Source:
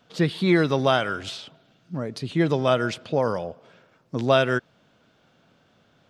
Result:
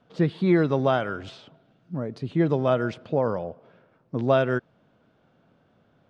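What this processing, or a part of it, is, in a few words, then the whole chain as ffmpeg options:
through cloth: -filter_complex "[0:a]asettb=1/sr,asplit=3[a][b][c];[a]atrim=end=3.154[d];[b]atrim=start=3.15:end=4.22,asetpts=PTS-STARTPTS,afade=t=in:d=0.004:c=qsin,afade=t=out:st=1.066:d=0.004:c=qsin,lowpass=5.6k[e];[c]atrim=start=4.216[f];[d][e]acrossfade=d=0.004:c1=hsin:c2=qsin[g];[g][f]acrossfade=d=0.004:c1=qsin:c2=hsin,lowpass=8.5k,highshelf=f=2.2k:g=-15"

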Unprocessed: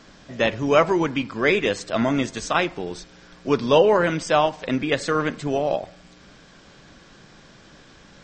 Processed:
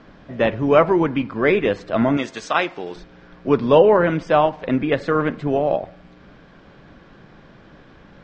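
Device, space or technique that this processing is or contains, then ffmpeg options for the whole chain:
phone in a pocket: -filter_complex "[0:a]asettb=1/sr,asplit=3[a][b][c];[a]atrim=end=2.174[d];[b]atrim=start=2.17:end=2.96,asetpts=PTS-STARTPTS,afade=t=in:d=0.004:c=qsin,afade=t=out:st=0.786:d=0.004:c=qsin,aemphasis=mode=production:type=riaa[e];[c]atrim=start=2.956[f];[d][e]acrossfade=d=0.004:c1=hsin:c2=qsin[g];[g][f]acrossfade=d=0.004:c1=qsin:c2=hsin,lowpass=3.3k,highshelf=f=2k:g=-8.5,volume=4dB"

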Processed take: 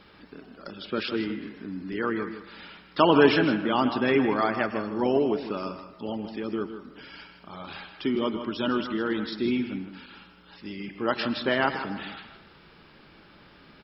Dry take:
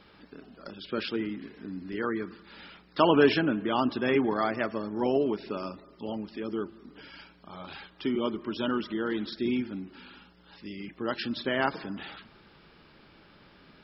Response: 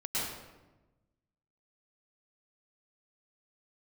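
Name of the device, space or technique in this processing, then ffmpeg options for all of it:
filtered reverb send: -filter_complex "[0:a]aecho=1:1:157:0.282,asplit=2[a][b];[b]highpass=f=590:w=0.5412,highpass=f=590:w=1.3066,lowpass=3.5k[c];[1:a]atrim=start_sample=2205[d];[c][d]afir=irnorm=-1:irlink=0,volume=-16.5dB[e];[a][e]amix=inputs=2:normalize=0,asettb=1/sr,asplit=3[f][g][h];[f]atrim=end=10.064[i];[g]atrim=start=10.06:end=11.54,asetpts=PTS-STARTPTS,afade=t=in:d=0.004:c=qsin,afade=t=out:st=1.476:d=0.004:c=qsin,adynamicequalizer=threshold=0.00562:dfrequency=820:dqfactor=0.82:tfrequency=820:tqfactor=0.82:attack=5:release=100:ratio=0.375:range=2.5:mode=boostabove:tftype=bell[j];[h]atrim=start=11.536[k];[i][j]acrossfade=d=0.004:c1=hsin:c2=qsin[l];[l][k]acrossfade=d=0.004:c1=qsin:c2=hsin,volume=2.5dB"

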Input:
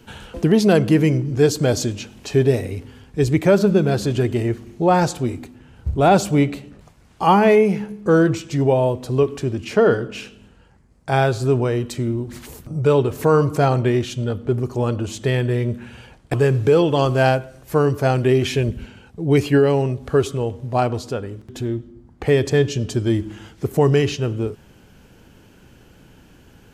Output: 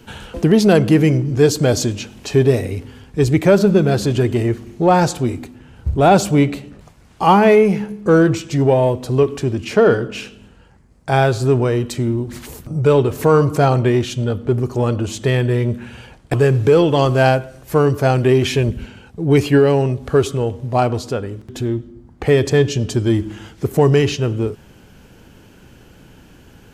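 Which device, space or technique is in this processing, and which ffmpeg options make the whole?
parallel distortion: -filter_complex "[0:a]asplit=2[a][b];[b]asoftclip=type=hard:threshold=-20dB,volume=-13dB[c];[a][c]amix=inputs=2:normalize=0,volume=2dB"

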